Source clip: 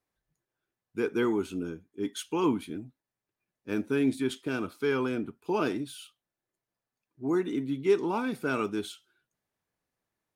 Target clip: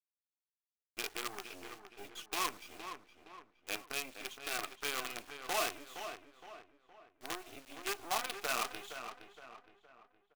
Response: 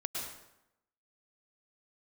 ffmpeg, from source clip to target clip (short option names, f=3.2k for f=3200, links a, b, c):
-filter_complex "[0:a]flanger=delay=2.6:depth=6.1:regen=-12:speed=0.88:shape=sinusoidal,acompressor=threshold=-35dB:ratio=4,asplit=3[a][b][c];[a]bandpass=f=730:t=q:w=8,volume=0dB[d];[b]bandpass=f=1.09k:t=q:w=8,volume=-6dB[e];[c]bandpass=f=2.44k:t=q:w=8,volume=-9dB[f];[d][e][f]amix=inputs=3:normalize=0,acrusher=bits=9:dc=4:mix=0:aa=0.000001,tiltshelf=f=880:g=-6.5,asplit=2[g][h];[h]adelay=466,lowpass=f=2.7k:p=1,volume=-8.5dB,asplit=2[i][j];[j]adelay=466,lowpass=f=2.7k:p=1,volume=0.44,asplit=2[k][l];[l]adelay=466,lowpass=f=2.7k:p=1,volume=0.44,asplit=2[m][n];[n]adelay=466,lowpass=f=2.7k:p=1,volume=0.44,asplit=2[o][p];[p]adelay=466,lowpass=f=2.7k:p=1,volume=0.44[q];[g][i][k][m][o][q]amix=inputs=6:normalize=0,volume=14dB"